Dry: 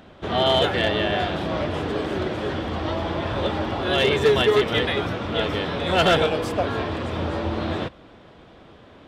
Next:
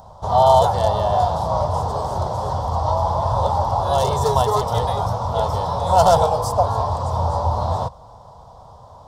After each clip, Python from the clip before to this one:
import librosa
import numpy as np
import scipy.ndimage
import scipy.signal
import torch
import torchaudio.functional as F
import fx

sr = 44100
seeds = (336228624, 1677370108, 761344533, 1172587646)

y = fx.curve_eq(x, sr, hz=(120.0, 330.0, 480.0, 950.0, 1600.0, 2500.0, 5100.0, 11000.0), db=(0, -25, -8, 7, -22, -29, 0, 2))
y = y * 10.0 ** (8.0 / 20.0)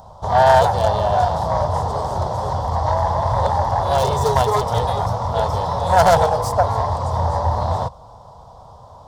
y = fx.self_delay(x, sr, depth_ms=0.12)
y = y * 10.0 ** (1.0 / 20.0)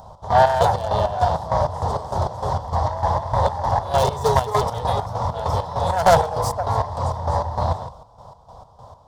y = fx.chopper(x, sr, hz=3.3, depth_pct=65, duty_pct=50)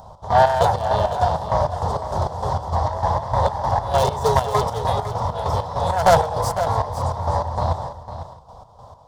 y = x + 10.0 ** (-11.5 / 20.0) * np.pad(x, (int(503 * sr / 1000.0), 0))[:len(x)]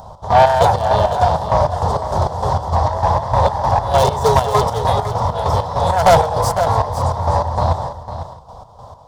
y = 10.0 ** (-6.5 / 20.0) * np.tanh(x / 10.0 ** (-6.5 / 20.0))
y = y * 10.0 ** (5.5 / 20.0)